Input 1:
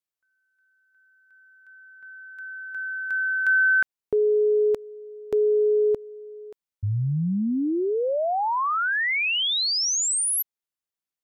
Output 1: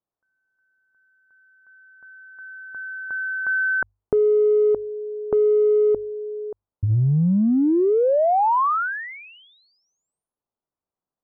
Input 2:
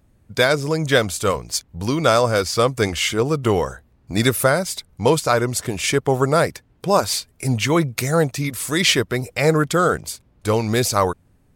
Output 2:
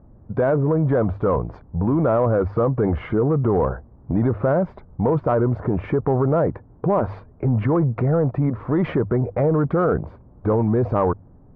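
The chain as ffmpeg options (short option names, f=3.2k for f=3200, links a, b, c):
-filter_complex "[0:a]asplit=2[a][b];[b]asoftclip=type=hard:threshold=-16dB,volume=-10dB[c];[a][c]amix=inputs=2:normalize=0,lowpass=f=1.1k:w=0.5412,lowpass=f=1.1k:w=1.3066,bandreject=f=50:t=h:w=6,bandreject=f=100:t=h:w=6,acompressor=threshold=-23dB:ratio=12:attack=2.3:release=25:knee=6:detection=peak,volume=7.5dB"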